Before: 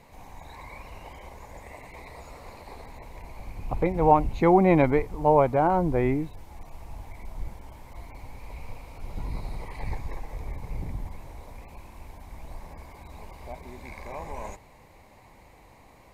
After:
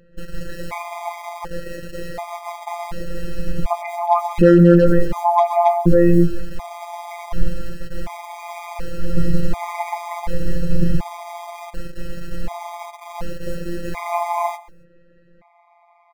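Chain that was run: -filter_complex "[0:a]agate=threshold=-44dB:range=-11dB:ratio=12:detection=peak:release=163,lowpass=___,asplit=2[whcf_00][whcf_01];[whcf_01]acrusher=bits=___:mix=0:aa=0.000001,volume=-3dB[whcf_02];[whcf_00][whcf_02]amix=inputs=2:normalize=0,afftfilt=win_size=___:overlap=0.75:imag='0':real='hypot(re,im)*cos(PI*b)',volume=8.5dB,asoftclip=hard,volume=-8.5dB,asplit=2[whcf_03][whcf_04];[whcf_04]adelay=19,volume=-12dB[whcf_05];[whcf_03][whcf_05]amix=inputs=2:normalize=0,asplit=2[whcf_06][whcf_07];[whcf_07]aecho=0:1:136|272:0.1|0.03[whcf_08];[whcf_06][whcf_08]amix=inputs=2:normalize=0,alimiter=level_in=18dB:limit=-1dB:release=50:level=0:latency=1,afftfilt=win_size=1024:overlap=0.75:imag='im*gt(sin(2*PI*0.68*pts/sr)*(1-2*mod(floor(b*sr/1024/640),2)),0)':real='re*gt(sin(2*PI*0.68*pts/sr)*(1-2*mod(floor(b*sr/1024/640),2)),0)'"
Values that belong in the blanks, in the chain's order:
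1800, 7, 1024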